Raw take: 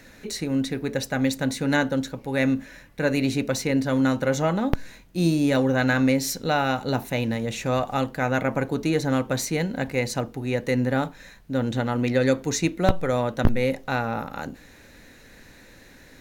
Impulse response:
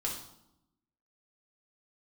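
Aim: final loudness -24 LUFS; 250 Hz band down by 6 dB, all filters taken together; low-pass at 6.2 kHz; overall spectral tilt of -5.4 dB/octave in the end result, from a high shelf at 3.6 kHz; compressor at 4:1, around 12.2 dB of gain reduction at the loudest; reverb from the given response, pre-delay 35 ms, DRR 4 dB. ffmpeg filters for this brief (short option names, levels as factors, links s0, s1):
-filter_complex "[0:a]lowpass=6200,equalizer=f=250:t=o:g=-7,highshelf=f=3600:g=-3.5,acompressor=threshold=0.0316:ratio=4,asplit=2[s0][s1];[1:a]atrim=start_sample=2205,adelay=35[s2];[s1][s2]afir=irnorm=-1:irlink=0,volume=0.447[s3];[s0][s3]amix=inputs=2:normalize=0,volume=2.66"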